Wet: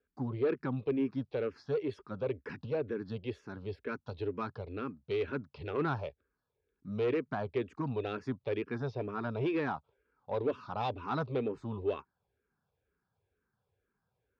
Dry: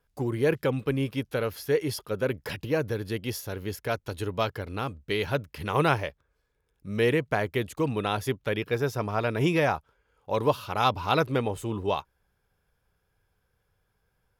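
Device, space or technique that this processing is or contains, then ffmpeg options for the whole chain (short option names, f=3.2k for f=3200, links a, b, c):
barber-pole phaser into a guitar amplifier: -filter_complex "[0:a]asplit=2[a][b];[b]afreqshift=-2.1[c];[a][c]amix=inputs=2:normalize=1,asoftclip=type=tanh:threshold=-22.5dB,highpass=76,equalizer=f=250:t=q:w=4:g=7,equalizer=f=400:t=q:w=4:g=5,equalizer=f=2k:t=q:w=4:g=-5,equalizer=f=3.1k:t=q:w=4:g=-7,lowpass=f=4k:w=0.5412,lowpass=f=4k:w=1.3066,volume=-4.5dB"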